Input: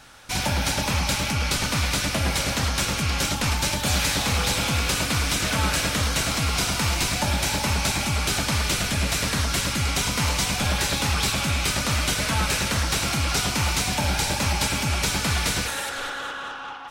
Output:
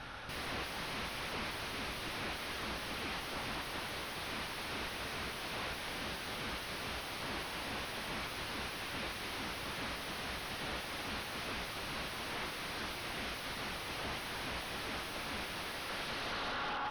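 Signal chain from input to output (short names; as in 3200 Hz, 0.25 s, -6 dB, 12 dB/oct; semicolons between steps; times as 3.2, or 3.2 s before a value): limiter -22.5 dBFS, peak gain reduction 10 dB; wavefolder -35.5 dBFS; running mean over 6 samples; gain +3.5 dB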